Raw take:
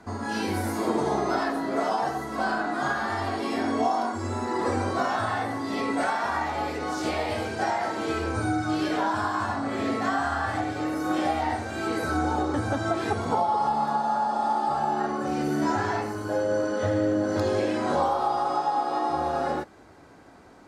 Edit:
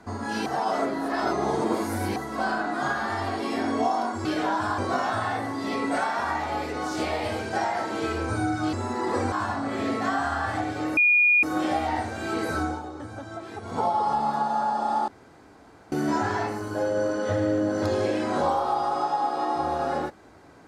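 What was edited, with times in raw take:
0.46–2.16 s: reverse
4.25–4.84 s: swap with 8.79–9.32 s
10.97 s: add tone 2.44 kHz -15.5 dBFS 0.46 s
12.12–13.40 s: dip -11 dB, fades 0.24 s
14.62–15.46 s: room tone

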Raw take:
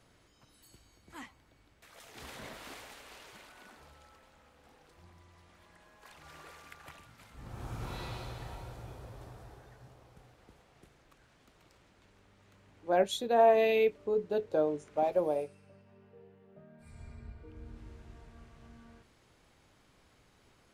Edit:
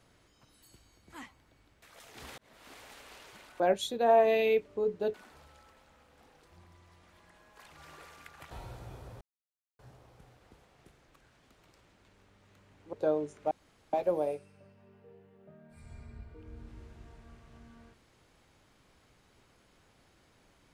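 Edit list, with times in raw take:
2.38–2.99 s: fade in linear
6.97–8.48 s: delete
9.18–9.76 s: mute
12.90–14.44 s: move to 3.60 s
15.02 s: insert room tone 0.42 s

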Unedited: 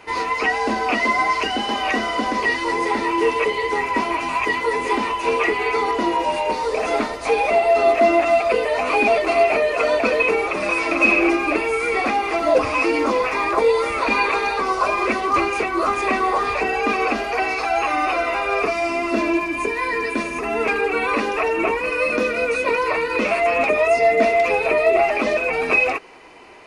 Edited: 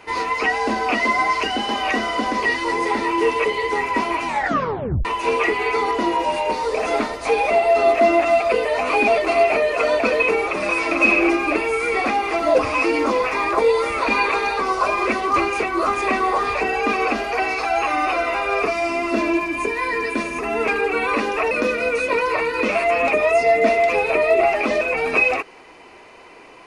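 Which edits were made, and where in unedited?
4.26 s: tape stop 0.79 s
21.51–22.07 s: delete

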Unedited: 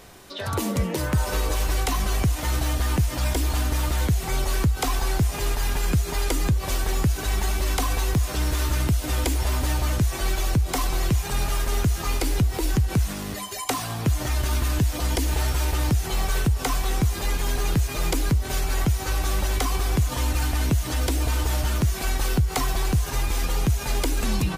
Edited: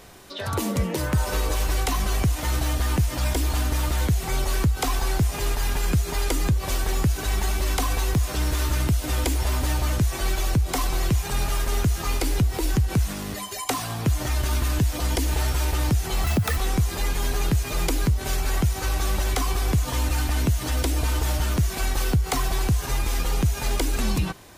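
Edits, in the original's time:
16.24–16.81 s: speed 173%

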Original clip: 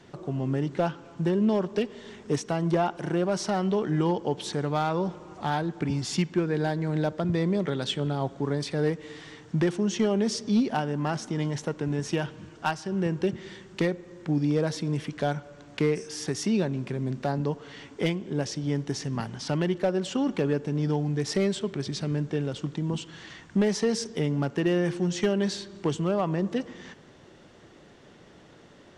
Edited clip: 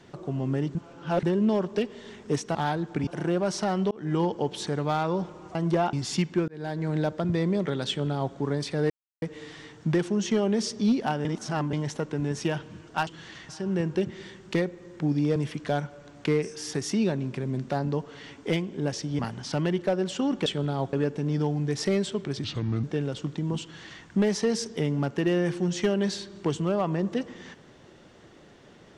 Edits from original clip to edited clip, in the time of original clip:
0.75–1.23 s: reverse
2.55–2.93 s: swap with 5.41–5.93 s
3.77–4.04 s: fade in
6.48–6.85 s: fade in
7.88–8.35 s: copy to 20.42 s
8.90 s: insert silence 0.32 s
10.93–11.41 s: reverse
14.62–14.89 s: delete
18.72–19.15 s: delete
21.93–22.23 s: speed 76%
23.02–23.44 s: copy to 12.75 s

